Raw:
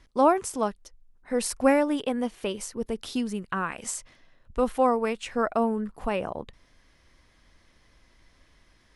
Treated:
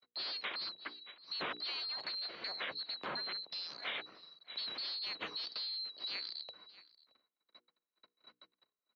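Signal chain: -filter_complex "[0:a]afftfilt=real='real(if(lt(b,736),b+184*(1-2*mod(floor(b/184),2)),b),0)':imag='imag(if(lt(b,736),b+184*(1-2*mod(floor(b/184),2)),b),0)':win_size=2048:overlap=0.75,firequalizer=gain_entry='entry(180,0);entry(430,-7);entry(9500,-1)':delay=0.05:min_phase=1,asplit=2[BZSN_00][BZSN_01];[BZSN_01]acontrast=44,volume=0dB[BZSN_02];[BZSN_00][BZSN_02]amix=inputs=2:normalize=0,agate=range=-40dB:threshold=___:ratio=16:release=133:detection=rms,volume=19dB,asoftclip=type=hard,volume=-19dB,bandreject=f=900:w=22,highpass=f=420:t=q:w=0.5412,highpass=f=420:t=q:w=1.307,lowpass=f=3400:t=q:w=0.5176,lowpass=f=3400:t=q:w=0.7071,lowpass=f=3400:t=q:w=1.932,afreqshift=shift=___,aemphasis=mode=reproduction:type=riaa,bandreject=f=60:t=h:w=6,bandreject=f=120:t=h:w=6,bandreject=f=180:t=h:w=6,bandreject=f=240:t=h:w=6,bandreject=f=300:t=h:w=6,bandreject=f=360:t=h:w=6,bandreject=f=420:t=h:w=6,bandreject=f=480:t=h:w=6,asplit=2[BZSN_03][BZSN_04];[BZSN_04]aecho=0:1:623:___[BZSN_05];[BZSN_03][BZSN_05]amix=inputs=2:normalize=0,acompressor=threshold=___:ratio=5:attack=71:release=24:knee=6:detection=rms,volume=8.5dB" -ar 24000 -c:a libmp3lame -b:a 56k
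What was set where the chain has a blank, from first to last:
-49dB, -56, 0.0668, -52dB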